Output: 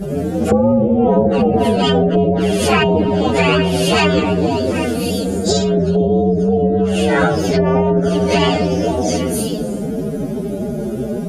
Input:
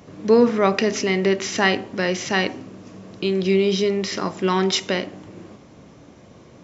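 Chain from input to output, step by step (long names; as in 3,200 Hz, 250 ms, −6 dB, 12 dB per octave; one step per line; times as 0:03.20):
partials spread apart or drawn together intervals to 119%
flanger swept by the level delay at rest 5.3 ms, full sweep at −16.5 dBFS
on a send: echo through a band-pass that steps 153 ms, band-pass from 240 Hz, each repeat 1.4 octaves, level −3 dB
on the sum: phase-vocoder stretch with locked phases 1.7×
treble cut that deepens with the level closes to 550 Hz, closed at −18 dBFS
octave-band graphic EQ 125/250/500/1,000/2,000/4,000 Hz +9/+10/+9/−10/−5/−8 dB
every bin compressed towards the loudest bin 4 to 1
level −3.5 dB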